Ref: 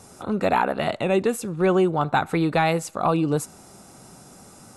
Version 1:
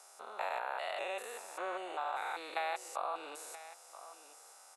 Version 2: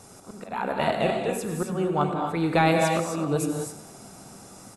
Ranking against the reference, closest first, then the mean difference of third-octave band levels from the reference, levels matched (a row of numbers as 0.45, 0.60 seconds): 2, 1; 6.5, 12.5 decibels